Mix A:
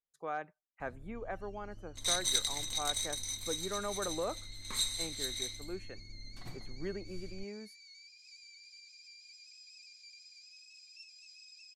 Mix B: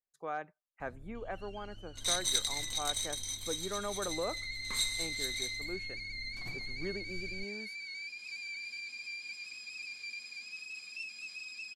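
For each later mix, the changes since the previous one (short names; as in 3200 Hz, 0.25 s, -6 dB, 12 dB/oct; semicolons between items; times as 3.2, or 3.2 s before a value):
first sound: remove band-pass 6000 Hz, Q 3.5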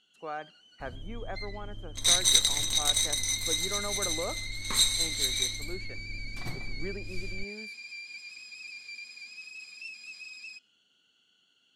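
speech: send on; first sound: entry -1.15 s; second sound +9.0 dB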